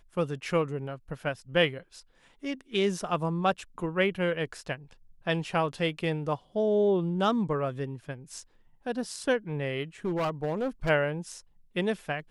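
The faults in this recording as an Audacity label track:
10.050000	10.900000	clipping −25 dBFS

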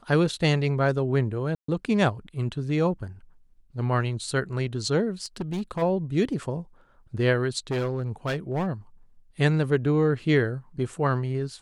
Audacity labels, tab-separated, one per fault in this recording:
1.550000	1.680000	drop-out 134 ms
5.240000	5.830000	clipping −24.5 dBFS
7.710000	8.680000	clipping −23 dBFS

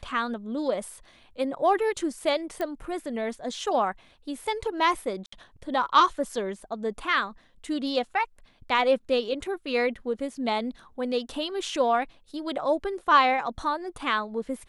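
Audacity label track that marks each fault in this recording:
2.610000	2.610000	click −18 dBFS
5.260000	5.320000	drop-out 64 ms

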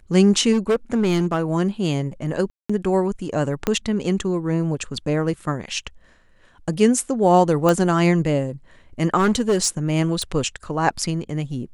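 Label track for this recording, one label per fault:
0.520000	1.400000	clipping −14.5 dBFS
2.500000	2.690000	drop-out 195 ms
3.670000	3.670000	click −6 dBFS
7.690000	7.690000	click
9.160000	9.690000	clipping −13.5 dBFS
10.220000	10.220000	click −12 dBFS

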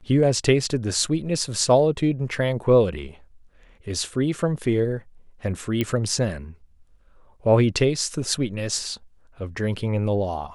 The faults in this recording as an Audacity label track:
5.810000	5.810000	click −11 dBFS

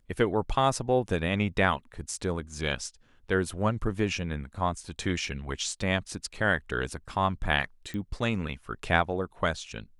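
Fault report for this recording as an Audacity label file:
7.940000	7.940000	click −24 dBFS

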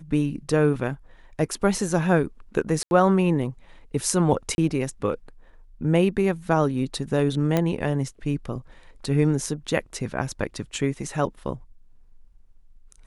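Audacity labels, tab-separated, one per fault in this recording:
2.830000	2.910000	drop-out 81 ms
4.550000	4.580000	drop-out 31 ms
7.570000	7.570000	click −9 dBFS

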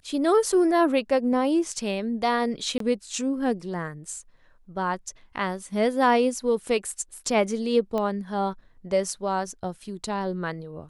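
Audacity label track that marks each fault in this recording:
2.780000	2.800000	drop-out 23 ms
7.980000	7.980000	click −17 dBFS

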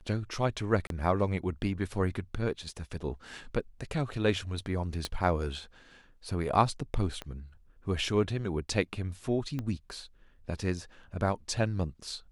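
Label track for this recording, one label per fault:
0.870000	0.900000	drop-out 32 ms
5.050000	5.050000	click −18 dBFS
7.220000	7.220000	click −23 dBFS
9.590000	9.590000	click −22 dBFS

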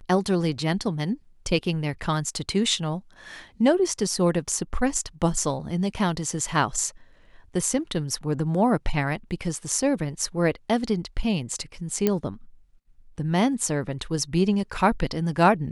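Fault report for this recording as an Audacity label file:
12.070000	12.070000	click −8 dBFS

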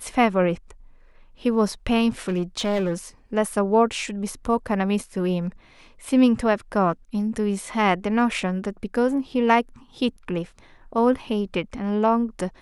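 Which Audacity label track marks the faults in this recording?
2.280000	2.930000	clipping −18.5 dBFS

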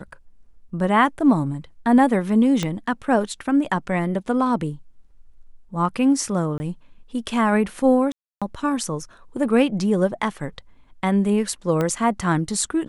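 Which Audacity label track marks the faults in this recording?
2.630000	2.630000	click −10 dBFS
6.580000	6.600000	drop-out 20 ms
8.120000	8.420000	drop-out 296 ms
11.810000	11.810000	click −11 dBFS

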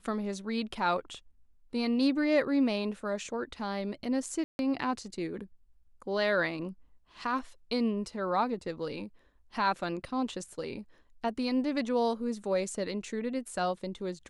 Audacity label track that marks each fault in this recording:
4.440000	4.590000	drop-out 151 ms

